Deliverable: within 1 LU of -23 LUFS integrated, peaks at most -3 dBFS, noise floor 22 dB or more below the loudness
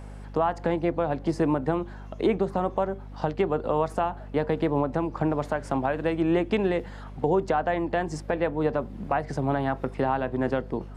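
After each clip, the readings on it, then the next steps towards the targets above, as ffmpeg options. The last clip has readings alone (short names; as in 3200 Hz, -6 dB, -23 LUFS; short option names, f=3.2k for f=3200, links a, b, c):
hum 50 Hz; harmonics up to 250 Hz; hum level -38 dBFS; loudness -27.0 LUFS; peak -12.0 dBFS; loudness target -23.0 LUFS
-> -af "bandreject=f=50:t=h:w=4,bandreject=f=100:t=h:w=4,bandreject=f=150:t=h:w=4,bandreject=f=200:t=h:w=4,bandreject=f=250:t=h:w=4"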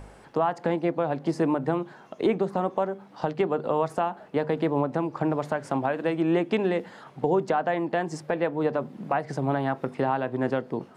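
hum none; loudness -27.5 LUFS; peak -12.5 dBFS; loudness target -23.0 LUFS
-> -af "volume=4.5dB"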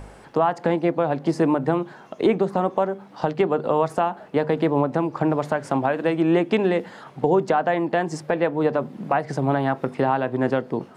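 loudness -23.0 LUFS; peak -8.0 dBFS; noise floor -46 dBFS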